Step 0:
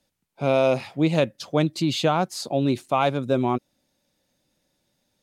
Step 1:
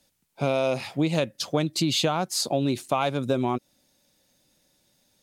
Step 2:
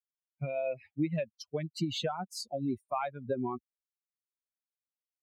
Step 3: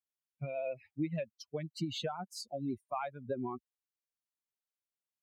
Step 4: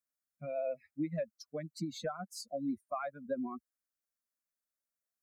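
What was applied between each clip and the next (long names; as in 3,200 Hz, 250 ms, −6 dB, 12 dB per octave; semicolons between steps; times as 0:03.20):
high-shelf EQ 3,700 Hz +7 dB; downward compressor 5 to 1, threshold −23 dBFS, peak gain reduction 8 dB; level +2.5 dB
spectral dynamics exaggerated over time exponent 3; high-shelf EQ 4,400 Hz −10.5 dB; level −3 dB
pitch vibrato 13 Hz 24 cents; level −4 dB
phaser with its sweep stopped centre 590 Hz, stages 8; level +2.5 dB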